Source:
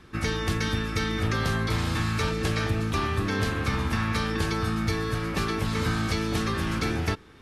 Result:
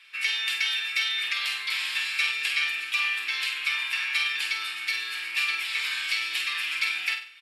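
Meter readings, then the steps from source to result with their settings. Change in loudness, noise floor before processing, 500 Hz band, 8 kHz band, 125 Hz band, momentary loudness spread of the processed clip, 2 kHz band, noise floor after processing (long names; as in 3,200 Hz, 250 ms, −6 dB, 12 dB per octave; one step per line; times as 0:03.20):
+1.5 dB, −45 dBFS, below −25 dB, 0.0 dB, below −40 dB, 3 LU, +6.0 dB, −37 dBFS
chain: high-pass with resonance 2,500 Hz, resonance Q 3.7
notch filter 6,200 Hz, Q 5.9
comb filter 6.7 ms, depth 39%
flutter between parallel walls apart 8.3 metres, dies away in 0.42 s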